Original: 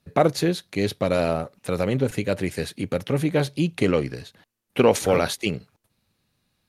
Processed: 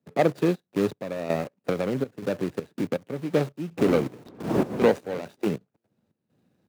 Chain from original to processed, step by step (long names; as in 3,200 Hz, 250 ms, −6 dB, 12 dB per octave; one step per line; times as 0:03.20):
running median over 41 samples
0:03.77–0:04.90: wind on the microphone 300 Hz −22 dBFS
in parallel at −7 dB: bit-depth reduction 6 bits, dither none
on the sum: high-pass filter 180 Hz 12 dB per octave
0:01.71–0:03.02: downward compressor 4 to 1, threshold −23 dBFS, peak gain reduction 7.5 dB
gate pattern ".xx.x..x.xx" 81 BPM −12 dB
multiband upward and downward compressor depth 40%
level −1 dB